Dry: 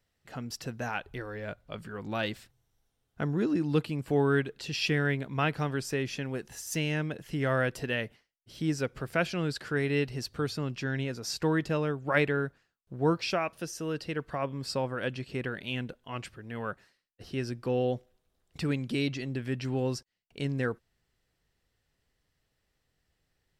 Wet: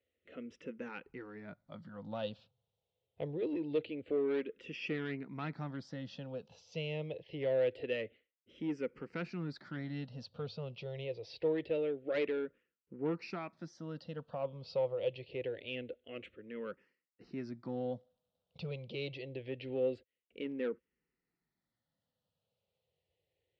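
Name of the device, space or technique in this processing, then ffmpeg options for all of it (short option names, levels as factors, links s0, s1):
barber-pole phaser into a guitar amplifier: -filter_complex "[0:a]asplit=2[s0][s1];[s1]afreqshift=-0.25[s2];[s0][s2]amix=inputs=2:normalize=1,asoftclip=type=tanh:threshold=0.0531,highpass=100,equalizer=f=130:t=q:w=4:g=-5,equalizer=f=510:t=q:w=4:g=9,equalizer=f=760:t=q:w=4:g=-3,equalizer=f=1100:t=q:w=4:g=-7,equalizer=f=1600:t=q:w=4:g=-9,lowpass=f=3800:w=0.5412,lowpass=f=3800:w=1.3066,volume=0.631"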